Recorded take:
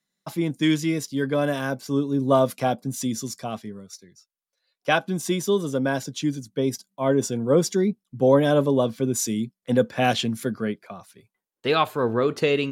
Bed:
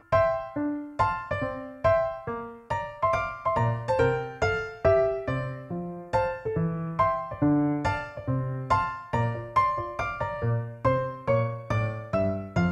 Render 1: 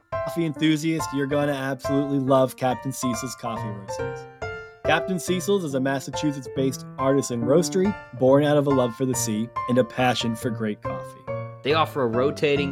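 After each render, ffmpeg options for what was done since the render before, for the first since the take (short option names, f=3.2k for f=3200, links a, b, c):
-filter_complex "[1:a]volume=-6.5dB[a];[0:a][a]amix=inputs=2:normalize=0"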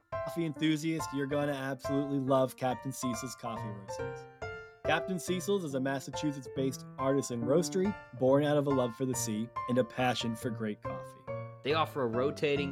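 -af "volume=-9dB"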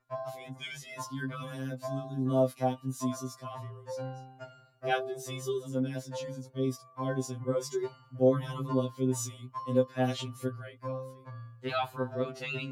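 -af "afftfilt=real='re*2.45*eq(mod(b,6),0)':imag='im*2.45*eq(mod(b,6),0)':win_size=2048:overlap=0.75"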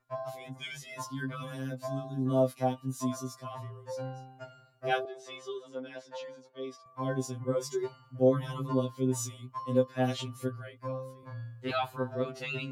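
-filter_complex "[0:a]asettb=1/sr,asplit=3[a][b][c];[a]atrim=end=5.054[d];[b]atrim=start=5.05:end=6.86,asetpts=PTS-STARTPTS,afade=t=in:d=0.004:c=qsin,afade=t=out:st=1.806:d=0.004:c=qsin,highpass=540,lowpass=4k[e];[c]atrim=start=6.856[f];[d][e]acrossfade=d=0.004:c1=hsin:c2=qsin[g];[g][f]acrossfade=d=0.004:c1=qsin:c2=hsin,asettb=1/sr,asplit=3[h][i][j];[h]atrim=end=11.204[k];[i]atrim=start=11.2:end=11.71,asetpts=PTS-STARTPTS,afade=t=in:d=0.004:c=qsin,afade=t=out:st=0.506:d=0.004:c=qsin,asplit=2[l][m];[m]adelay=27,volume=-2.5dB[n];[l][n]amix=inputs=2:normalize=0,atrim=end_sample=22491[o];[j]atrim=start=11.706[p];[k][o]acrossfade=d=0.004:c1=hsin:c2=qsin[q];[q][p]acrossfade=d=0.004:c1=qsin:c2=hsin"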